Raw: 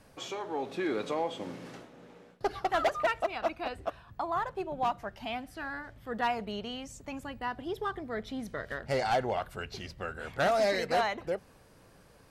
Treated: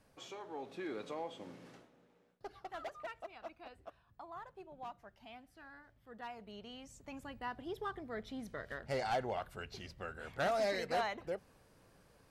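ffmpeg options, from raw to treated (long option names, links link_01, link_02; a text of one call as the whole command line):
ffmpeg -i in.wav -af "volume=-0.5dB,afade=type=out:start_time=1.69:duration=0.4:silence=0.473151,afade=type=in:start_time=6.31:duration=1.01:silence=0.316228" out.wav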